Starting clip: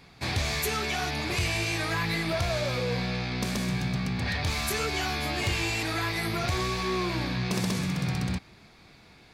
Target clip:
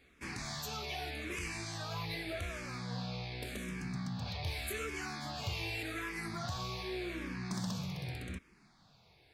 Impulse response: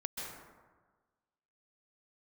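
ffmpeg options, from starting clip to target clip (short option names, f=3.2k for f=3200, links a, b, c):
-filter_complex "[0:a]asplit=2[a][b];[b]afreqshift=-0.85[c];[a][c]amix=inputs=2:normalize=1,volume=-8dB"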